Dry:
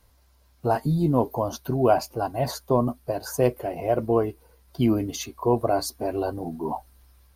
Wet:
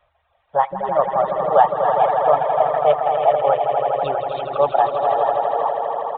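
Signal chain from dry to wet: resonant low shelf 360 Hz -12.5 dB, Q 3; swelling echo 97 ms, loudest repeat 5, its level -6 dB; varispeed +19%; downsampling 8000 Hz; reverb removal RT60 0.89 s; gain +2 dB

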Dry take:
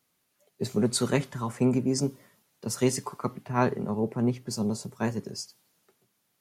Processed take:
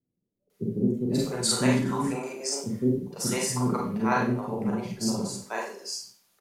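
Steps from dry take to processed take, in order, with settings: bands offset in time lows, highs 0.5 s, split 430 Hz; harmonic-percussive split harmonic -5 dB; Schroeder reverb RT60 0.41 s, combs from 32 ms, DRR -3 dB

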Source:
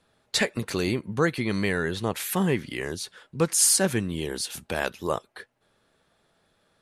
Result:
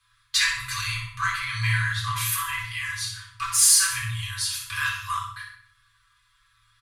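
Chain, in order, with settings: frequency shift +13 Hz; comb 6 ms, depth 79%; shoebox room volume 730 m³, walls furnished, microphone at 3.8 m; in parallel at -8 dB: hard clip -16 dBFS, distortion -8 dB; on the sum: FFT band-reject 120–990 Hz; on a send: flutter echo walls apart 10.7 m, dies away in 0.48 s; on the sum: gain -4.5 dB

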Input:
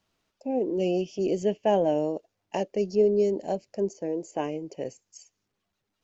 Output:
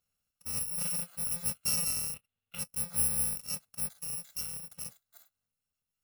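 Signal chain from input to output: FFT order left unsorted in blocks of 128 samples; 2.14–2.59 resonant high shelf 4300 Hz -9 dB, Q 3; gain -8 dB

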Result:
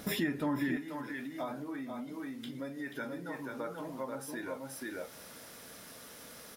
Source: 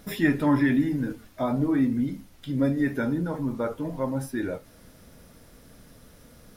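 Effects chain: echo 0.484 s -5 dB; compressor 6:1, threshold -36 dBFS, peak gain reduction 18.5 dB; HPF 160 Hz 6 dB/oct, from 0.77 s 810 Hz; gain +6 dB

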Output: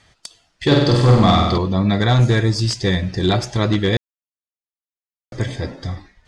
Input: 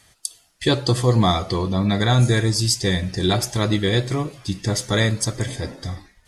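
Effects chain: high shelf 7100 Hz +3.5 dB; wavefolder -10.5 dBFS; air absorption 130 m; 0.66–1.58 flutter echo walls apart 8.3 m, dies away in 1 s; 3.97–5.32 mute; gain +3 dB

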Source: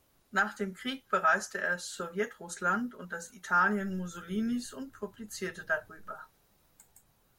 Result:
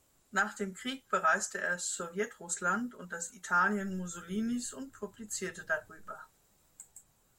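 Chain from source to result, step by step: bell 7600 Hz +14 dB 0.32 oct; gain -2 dB

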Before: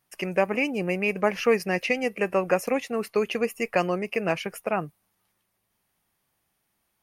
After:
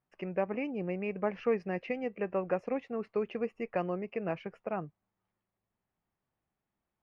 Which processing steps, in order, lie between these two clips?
tape spacing loss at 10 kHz 41 dB; gain -6 dB

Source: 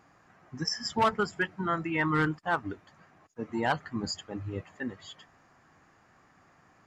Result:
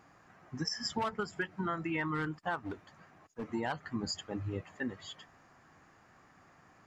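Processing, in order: 2.63–3.48 overloaded stage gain 33.5 dB; compressor 12:1, threshold -31 dBFS, peak gain reduction 10.5 dB

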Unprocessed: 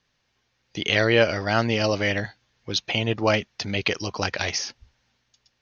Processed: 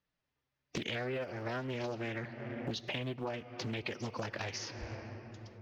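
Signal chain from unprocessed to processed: block floating point 7-bit; gate with hold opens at -49 dBFS; high shelf 2700 Hz -10 dB; on a send at -17 dB: reverb RT60 3.2 s, pre-delay 4 ms; on the sum: formant-preserving pitch shift +2 st; compressor 12:1, threshold -44 dBFS, peak gain reduction 29 dB; Doppler distortion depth 0.68 ms; gain +8.5 dB

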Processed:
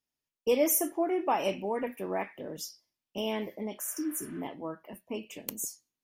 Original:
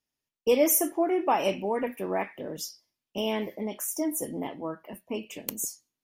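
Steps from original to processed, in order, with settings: spectral repair 3.87–4.39, 450–4000 Hz before; gain -3.5 dB

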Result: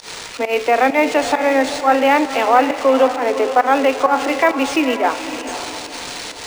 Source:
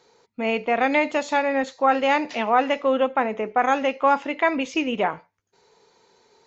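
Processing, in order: switching spikes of -21 dBFS; steep high-pass 250 Hz 96 dB/oct; high shelf 5000 Hz -10 dB; in parallel at -1 dB: limiter -18.5 dBFS, peak gain reduction 10.5 dB; on the sum: pump 133 bpm, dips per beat 1, -23 dB, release 0.134 s; diffused feedback echo 0.512 s, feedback 41%, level -10.5 dB; on a send at -16 dB: reverb RT60 2.7 s, pre-delay 3 ms; on the sum: decimation joined by straight lines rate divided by 3×; gain +4 dB

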